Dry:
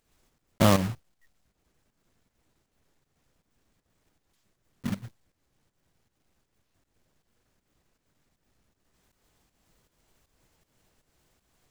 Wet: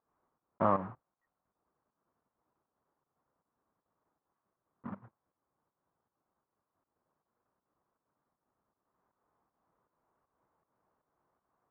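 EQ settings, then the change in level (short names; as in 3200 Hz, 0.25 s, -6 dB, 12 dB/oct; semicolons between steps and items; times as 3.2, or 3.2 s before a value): HPF 290 Hz 6 dB/oct; ladder low-pass 1300 Hz, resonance 50%; +2.0 dB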